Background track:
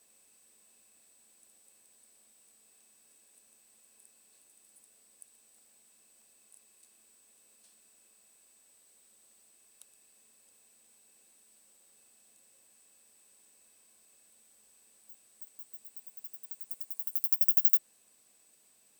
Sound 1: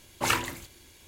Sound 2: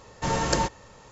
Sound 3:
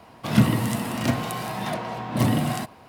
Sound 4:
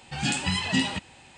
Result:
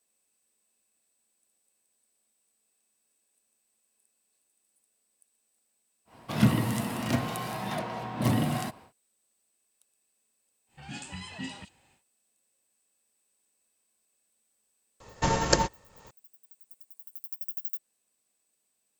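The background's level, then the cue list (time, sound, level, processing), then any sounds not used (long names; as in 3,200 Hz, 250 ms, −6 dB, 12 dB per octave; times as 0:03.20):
background track −11.5 dB
0:06.05: mix in 3 −4.5 dB, fades 0.10 s
0:10.66: mix in 4 −13.5 dB, fades 0.10 s + multiband delay without the direct sound lows, highs 40 ms, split 3,600 Hz
0:15.00: mix in 2 −2 dB + transient designer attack +6 dB, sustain −8 dB
not used: 1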